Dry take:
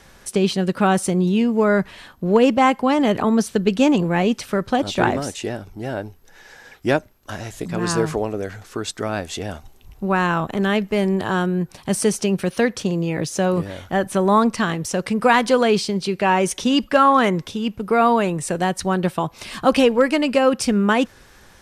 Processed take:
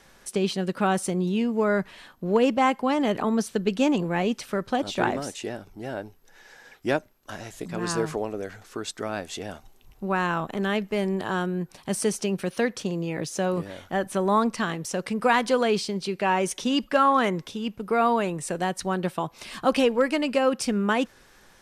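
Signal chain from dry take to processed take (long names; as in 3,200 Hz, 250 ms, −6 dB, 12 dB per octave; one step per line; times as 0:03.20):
parametric band 71 Hz −8.5 dB 1.6 octaves
level −5.5 dB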